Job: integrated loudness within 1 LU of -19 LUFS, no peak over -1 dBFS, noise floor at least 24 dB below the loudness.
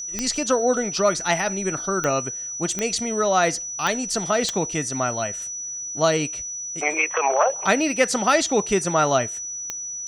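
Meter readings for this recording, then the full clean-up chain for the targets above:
clicks 6; steady tone 5900 Hz; tone level -29 dBFS; loudness -22.5 LUFS; peak -5.0 dBFS; loudness target -19.0 LUFS
-> de-click; notch 5900 Hz, Q 30; gain +3.5 dB

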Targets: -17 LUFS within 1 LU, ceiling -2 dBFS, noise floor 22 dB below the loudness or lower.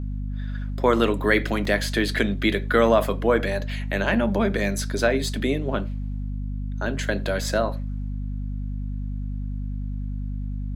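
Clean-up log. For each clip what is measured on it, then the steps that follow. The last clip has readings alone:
dropouts 1; longest dropout 3.5 ms; hum 50 Hz; harmonics up to 250 Hz; hum level -26 dBFS; loudness -25.0 LUFS; peak -5.0 dBFS; loudness target -17.0 LUFS
-> interpolate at 1.65, 3.5 ms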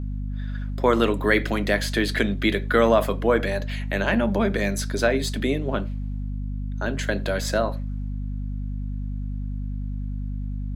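dropouts 0; hum 50 Hz; harmonics up to 250 Hz; hum level -26 dBFS
-> de-hum 50 Hz, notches 5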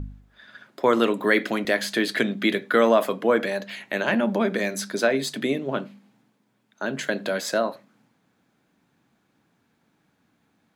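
hum none; loudness -24.0 LUFS; peak -4.5 dBFS; loudness target -17.0 LUFS
-> gain +7 dB; limiter -2 dBFS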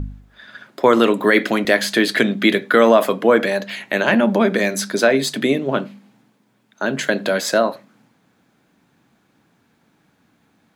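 loudness -17.5 LUFS; peak -2.0 dBFS; noise floor -62 dBFS

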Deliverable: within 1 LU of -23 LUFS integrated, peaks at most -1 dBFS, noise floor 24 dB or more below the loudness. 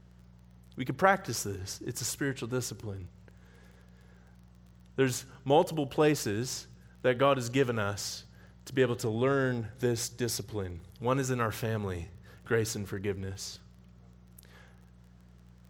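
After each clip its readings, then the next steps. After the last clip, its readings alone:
ticks 25/s; hum 60 Hz; harmonics up to 180 Hz; hum level -55 dBFS; loudness -31.0 LUFS; peak -8.0 dBFS; loudness target -23.0 LUFS
-> de-click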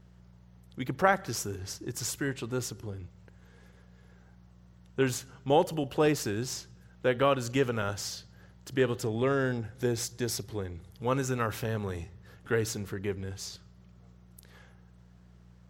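ticks 0/s; hum 60 Hz; harmonics up to 180 Hz; hum level -55 dBFS
-> de-hum 60 Hz, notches 3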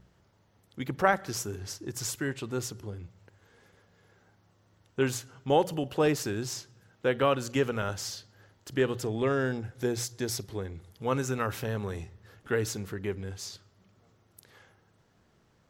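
hum none; loudness -31.5 LUFS; peak -8.0 dBFS; loudness target -23.0 LUFS
-> gain +8.5 dB; limiter -1 dBFS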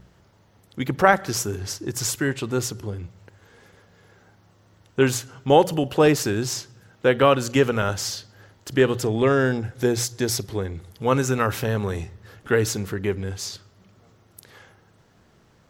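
loudness -23.0 LUFS; peak -1.0 dBFS; noise floor -58 dBFS

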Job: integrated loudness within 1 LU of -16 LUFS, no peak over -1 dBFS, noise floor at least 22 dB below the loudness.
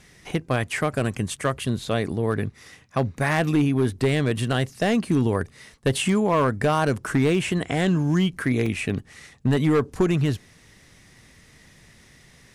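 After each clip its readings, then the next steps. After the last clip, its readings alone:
clipped 1.5%; flat tops at -14.0 dBFS; dropouts 1; longest dropout 3.7 ms; loudness -23.5 LUFS; peak -14.0 dBFS; loudness target -16.0 LUFS
-> clip repair -14 dBFS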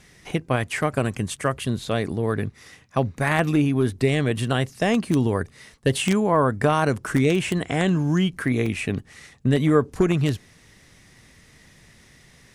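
clipped 0.0%; dropouts 1; longest dropout 3.7 ms
-> interpolate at 8.66, 3.7 ms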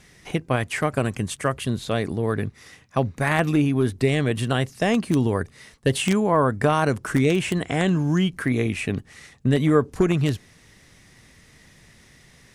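dropouts 0; loudness -23.0 LUFS; peak -5.0 dBFS; loudness target -16.0 LUFS
-> gain +7 dB; limiter -1 dBFS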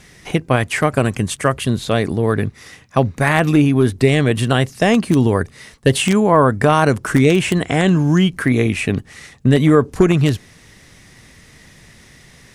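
loudness -16.0 LUFS; peak -1.0 dBFS; noise floor -47 dBFS

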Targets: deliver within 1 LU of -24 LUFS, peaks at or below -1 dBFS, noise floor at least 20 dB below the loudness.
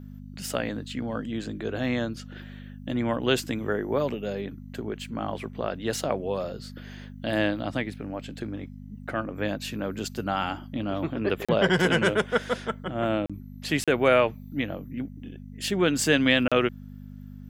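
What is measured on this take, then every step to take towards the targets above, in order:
dropouts 4; longest dropout 36 ms; hum 50 Hz; harmonics up to 250 Hz; hum level -39 dBFS; loudness -27.5 LUFS; peak -6.0 dBFS; loudness target -24.0 LUFS
-> interpolate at 11.45/13.26/13.84/16.48, 36 ms; de-hum 50 Hz, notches 5; gain +3.5 dB

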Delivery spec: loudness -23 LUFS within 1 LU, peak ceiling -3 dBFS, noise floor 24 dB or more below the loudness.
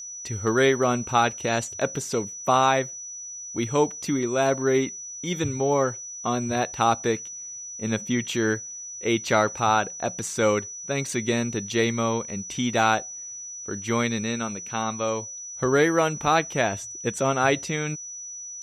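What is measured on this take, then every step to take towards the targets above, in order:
steady tone 5900 Hz; tone level -35 dBFS; loudness -25.0 LUFS; peak -7.0 dBFS; loudness target -23.0 LUFS
-> notch 5900 Hz, Q 30; gain +2 dB

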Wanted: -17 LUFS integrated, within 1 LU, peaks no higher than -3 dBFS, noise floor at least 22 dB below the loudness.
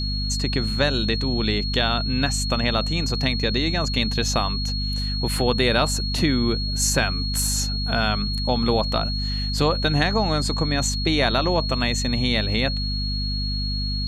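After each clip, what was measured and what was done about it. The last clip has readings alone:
hum 50 Hz; harmonics up to 250 Hz; hum level -24 dBFS; steady tone 4300 Hz; tone level -28 dBFS; loudness -22.0 LUFS; peak -4.5 dBFS; loudness target -17.0 LUFS
-> de-hum 50 Hz, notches 5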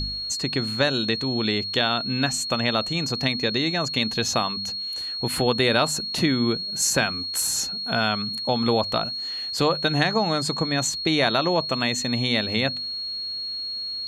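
hum none; steady tone 4300 Hz; tone level -28 dBFS
-> notch 4300 Hz, Q 30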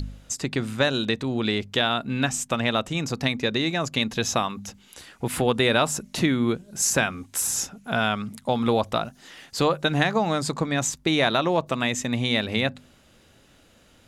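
steady tone none; loudness -24.5 LUFS; peak -7.0 dBFS; loudness target -17.0 LUFS
-> gain +7.5 dB; limiter -3 dBFS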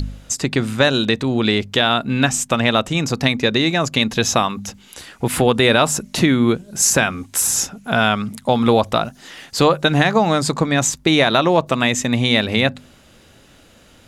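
loudness -17.0 LUFS; peak -3.0 dBFS; noise floor -49 dBFS

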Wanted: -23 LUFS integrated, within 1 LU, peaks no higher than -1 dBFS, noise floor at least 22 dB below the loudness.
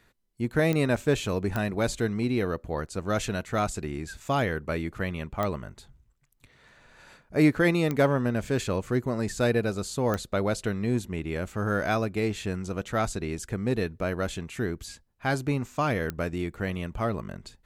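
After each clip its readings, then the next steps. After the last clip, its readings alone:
clicks 6; loudness -28.5 LUFS; peak -10.5 dBFS; loudness target -23.0 LUFS
-> de-click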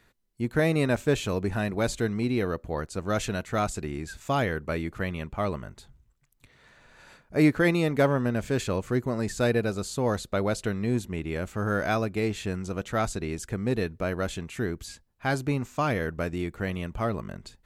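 clicks 0; loudness -28.5 LUFS; peak -10.5 dBFS; loudness target -23.0 LUFS
-> gain +5.5 dB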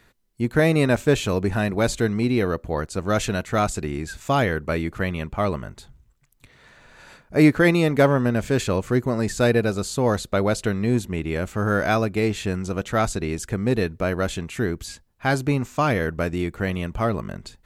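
loudness -23.0 LUFS; peak -5.0 dBFS; noise floor -60 dBFS

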